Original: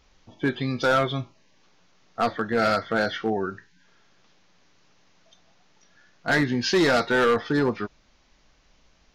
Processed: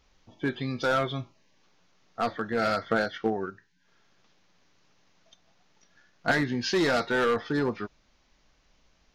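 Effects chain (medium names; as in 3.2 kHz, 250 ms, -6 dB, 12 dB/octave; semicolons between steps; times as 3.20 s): 2.85–6.32 s: transient shaper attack +6 dB, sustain -6 dB; trim -4.5 dB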